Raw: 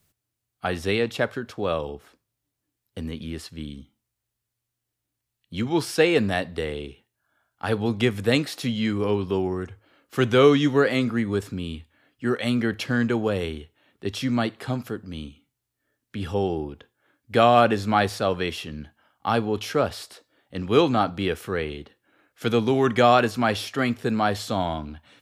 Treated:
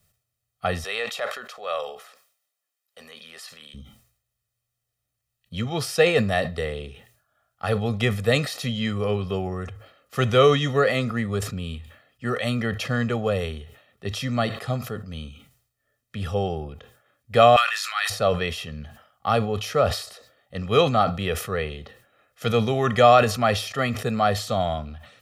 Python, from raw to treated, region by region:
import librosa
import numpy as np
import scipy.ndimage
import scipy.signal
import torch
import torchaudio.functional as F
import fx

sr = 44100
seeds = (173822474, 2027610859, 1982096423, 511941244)

y = fx.chain(x, sr, fx.highpass(hz=700.0, slope=12),
    fx.transient(attack_db=-5, sustain_db=6), at=(0.84, 3.74))
y = fx.chain(y, sr, fx.highpass(hz=1400.0, slope=24),
    fx.sustainer(db_per_s=27.0), at=(17.56, 18.1))
y = y + 0.74 * np.pad(y, (int(1.6 * sr / 1000.0), 0))[:len(y)]
y = fx.sustainer(y, sr, db_per_s=96.0)
y = y * librosa.db_to_amplitude(-1.0)